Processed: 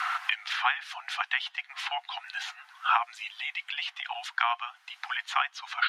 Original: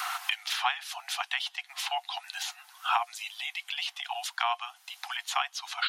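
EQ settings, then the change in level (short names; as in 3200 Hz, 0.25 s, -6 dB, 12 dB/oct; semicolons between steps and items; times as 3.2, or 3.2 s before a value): band-pass 1600 Hz, Q 1.4; +6.0 dB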